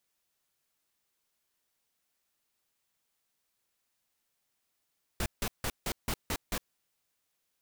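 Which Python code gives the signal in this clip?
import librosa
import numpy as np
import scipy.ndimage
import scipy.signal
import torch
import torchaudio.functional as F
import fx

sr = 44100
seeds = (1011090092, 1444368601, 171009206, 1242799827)

y = fx.noise_burst(sr, seeds[0], colour='pink', on_s=0.06, off_s=0.16, bursts=7, level_db=-32.0)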